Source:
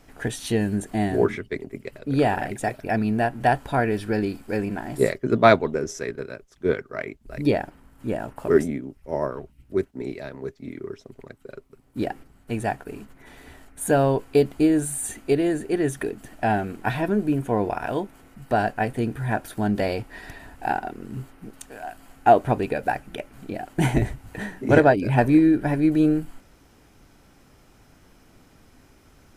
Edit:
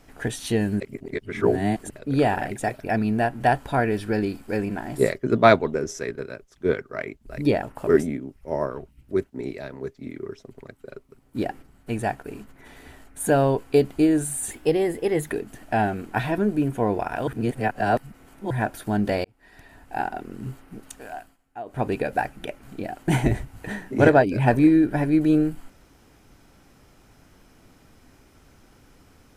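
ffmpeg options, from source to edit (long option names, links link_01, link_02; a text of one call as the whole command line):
ffmpeg -i in.wav -filter_complex "[0:a]asplit=11[link_01][link_02][link_03][link_04][link_05][link_06][link_07][link_08][link_09][link_10][link_11];[link_01]atrim=end=0.802[link_12];[link_02]atrim=start=0.798:end=1.902,asetpts=PTS-STARTPTS,areverse[link_13];[link_03]atrim=start=1.898:end=7.632[link_14];[link_04]atrim=start=8.238:end=15.124[link_15];[link_05]atrim=start=15.12:end=16.01,asetpts=PTS-STARTPTS,asetrate=49392,aresample=44100[link_16];[link_06]atrim=start=16.006:end=17.982[link_17];[link_07]atrim=start=17.978:end=19.212,asetpts=PTS-STARTPTS,areverse[link_18];[link_08]atrim=start=19.208:end=19.95,asetpts=PTS-STARTPTS,afade=type=out:start_time=0.738:duration=0.004:curve=hsin[link_19];[link_09]atrim=start=19.95:end=22.08,asetpts=PTS-STARTPTS,afade=type=in:duration=1,afade=type=out:start_time=1.88:duration=0.25:silence=0.0891251[link_20];[link_10]atrim=start=22.08:end=22.36,asetpts=PTS-STARTPTS,volume=-21dB[link_21];[link_11]atrim=start=22.36,asetpts=PTS-STARTPTS,afade=type=in:duration=0.25:silence=0.0891251[link_22];[link_12][link_13]acrossfade=duration=0.004:curve1=hsin:curve2=hsin[link_23];[link_23][link_14]acrossfade=duration=0.004:curve1=hsin:curve2=hsin[link_24];[link_24][link_15]acrossfade=duration=0.004:curve1=hsin:curve2=hsin[link_25];[link_25][link_16]acrossfade=duration=0.004:curve1=hsin:curve2=hsin[link_26];[link_26][link_17]acrossfade=duration=0.004:curve1=hsin:curve2=hsin[link_27];[link_27][link_18]acrossfade=duration=0.004:curve1=hsin:curve2=hsin[link_28];[link_19][link_20][link_21][link_22]concat=n=4:v=0:a=1[link_29];[link_28][link_29]acrossfade=duration=0.004:curve1=hsin:curve2=hsin" out.wav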